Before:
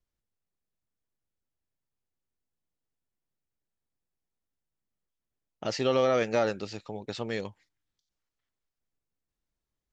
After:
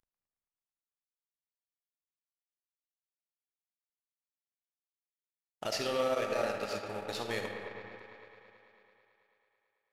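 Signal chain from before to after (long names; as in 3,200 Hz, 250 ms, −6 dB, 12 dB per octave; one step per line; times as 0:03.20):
variable-slope delta modulation 64 kbit/s
parametric band 190 Hz −8.5 dB 2.8 octaves
brickwall limiter −25 dBFS, peak gain reduction 8 dB
delay with a band-pass on its return 110 ms, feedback 81%, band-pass 1,300 Hz, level −7 dB
comb and all-pass reverb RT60 2.2 s, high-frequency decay 0.4×, pre-delay 5 ms, DRR 1.5 dB
transient designer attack +2 dB, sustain −8 dB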